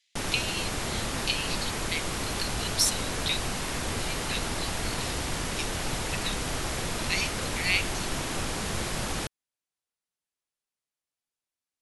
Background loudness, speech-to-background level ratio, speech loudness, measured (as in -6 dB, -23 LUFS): -31.0 LUFS, -1.0 dB, -32.0 LUFS